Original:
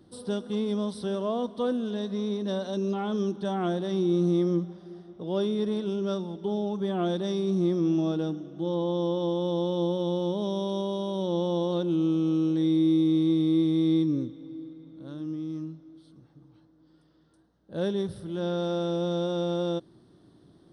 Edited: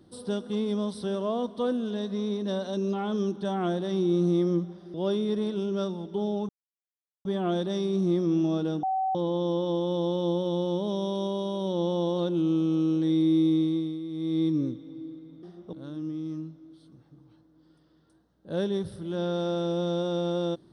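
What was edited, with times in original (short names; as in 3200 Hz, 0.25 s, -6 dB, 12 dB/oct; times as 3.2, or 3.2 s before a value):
4.94–5.24 move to 14.97
6.79 insert silence 0.76 s
8.37–8.69 bleep 762 Hz -24 dBFS
13.07–14.09 dip -13 dB, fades 0.47 s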